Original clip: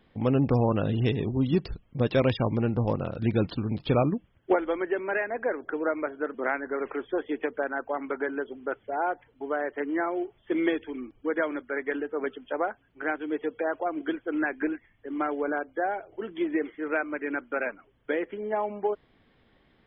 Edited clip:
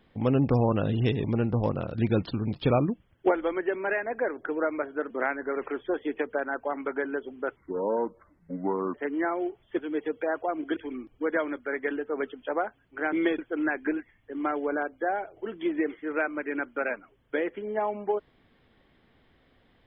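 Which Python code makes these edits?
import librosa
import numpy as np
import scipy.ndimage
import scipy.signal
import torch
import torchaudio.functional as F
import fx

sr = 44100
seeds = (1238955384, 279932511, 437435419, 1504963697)

y = fx.edit(x, sr, fx.cut(start_s=1.24, length_s=1.24),
    fx.speed_span(start_s=8.8, length_s=0.9, speed=0.65),
    fx.swap(start_s=10.54, length_s=0.26, other_s=13.16, other_length_s=0.98), tone=tone)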